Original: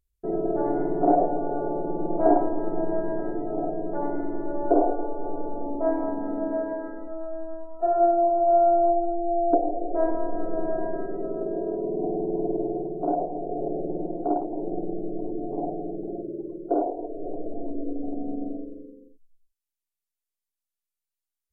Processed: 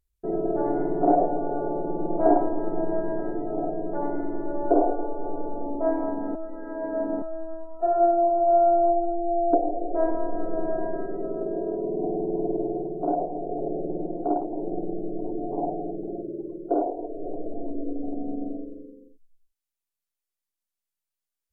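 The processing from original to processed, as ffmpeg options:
-filter_complex "[0:a]asettb=1/sr,asplit=3[a][b][c];[a]atrim=end=13.594[d];[b]atrim=start=13.59:end=14.17,asetpts=PTS-STARTPTS,afade=t=in:d=0.004:c=qsin,afade=t=out:st=0.576:d=0.004:c=qsin,lowpass=1k[e];[c]atrim=start=14.166[f];[d][e]acrossfade=d=0.004:c1=hsin:c2=qsin[g];[g][f]acrossfade=d=0.004:c1=qsin:c2=hsin,asplit=3[h][i][j];[h]afade=t=out:st=15.24:d=0.02[k];[i]equalizer=f=940:t=o:w=0.76:g=7,afade=t=in:st=15.24:d=0.02,afade=t=out:st=15.91:d=0.02[l];[j]afade=t=in:st=15.91:d=0.02[m];[k][l][m]amix=inputs=3:normalize=0,asplit=3[n][o][p];[n]atrim=end=6.352[q];[o]atrim=start=6.348:end=7.222,asetpts=PTS-STARTPTS,areverse[r];[p]atrim=start=7.218[s];[q][r]acrossfade=d=0.004:c1=hsin:c2=hsin[t];[t][s]acrossfade=d=0.004:c1=hsin:c2=hsin"

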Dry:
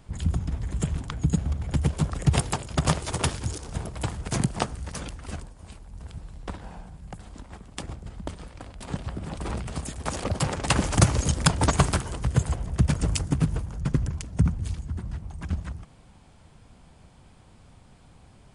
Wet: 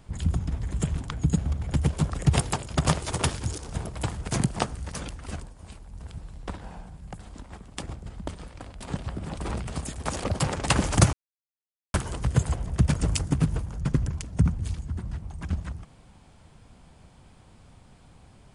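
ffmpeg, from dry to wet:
-filter_complex "[0:a]asplit=3[a][b][c];[a]atrim=end=11.13,asetpts=PTS-STARTPTS,afade=t=out:st=11.126:d=0.004:c=hsin[d];[b]atrim=start=11.13:end=11.94,asetpts=PTS-STARTPTS,volume=0[e];[c]atrim=start=11.94,asetpts=PTS-STARTPTS,afade=t=in:d=0.004:c=hsin[f];[d][e][f]concat=n=3:v=0:a=1"

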